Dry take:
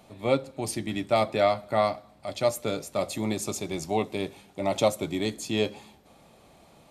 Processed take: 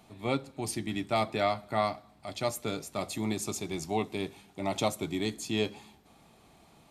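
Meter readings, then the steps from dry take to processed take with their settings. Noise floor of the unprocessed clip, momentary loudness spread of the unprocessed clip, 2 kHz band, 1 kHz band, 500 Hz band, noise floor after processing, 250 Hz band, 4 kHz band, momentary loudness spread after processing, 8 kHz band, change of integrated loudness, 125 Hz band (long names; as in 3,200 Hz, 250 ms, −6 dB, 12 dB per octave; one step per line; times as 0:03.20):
−57 dBFS, 8 LU, −2.5 dB, −3.5 dB, −7.0 dB, −60 dBFS, −2.5 dB, −2.5 dB, 6 LU, −2.5 dB, −4.5 dB, −2.5 dB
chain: parametric band 550 Hz −9.5 dB 0.32 octaves
level −2.5 dB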